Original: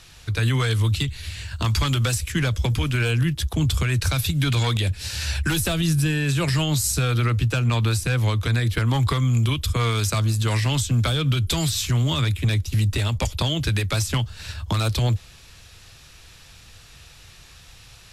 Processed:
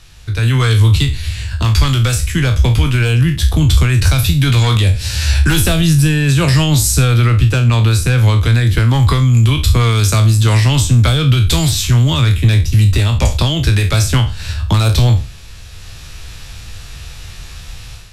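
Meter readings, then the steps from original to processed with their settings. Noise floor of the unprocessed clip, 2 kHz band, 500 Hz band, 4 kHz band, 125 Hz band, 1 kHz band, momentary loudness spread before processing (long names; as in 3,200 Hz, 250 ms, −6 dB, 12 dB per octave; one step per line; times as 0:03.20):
−48 dBFS, +7.5 dB, +7.5 dB, +8.0 dB, +10.5 dB, +7.5 dB, 4 LU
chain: peak hold with a decay on every bin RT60 0.34 s
low-shelf EQ 100 Hz +10.5 dB
automatic gain control gain up to 10 dB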